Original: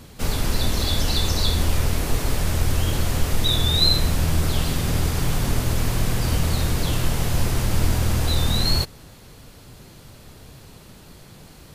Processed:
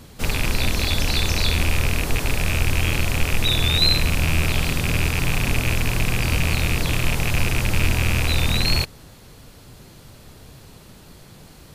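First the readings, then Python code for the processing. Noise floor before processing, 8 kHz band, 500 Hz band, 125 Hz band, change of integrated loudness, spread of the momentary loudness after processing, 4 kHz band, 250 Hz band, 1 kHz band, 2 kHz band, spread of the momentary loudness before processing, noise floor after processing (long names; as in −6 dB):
−46 dBFS, 0.0 dB, 0.0 dB, 0.0 dB, +1.5 dB, 4 LU, +1.0 dB, 0.0 dB, +0.5 dB, +9.0 dB, 5 LU, −46 dBFS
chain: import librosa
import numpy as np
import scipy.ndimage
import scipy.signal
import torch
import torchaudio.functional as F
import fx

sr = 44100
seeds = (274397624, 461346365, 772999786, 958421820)

y = fx.rattle_buzz(x, sr, strikes_db=-23.0, level_db=-12.0)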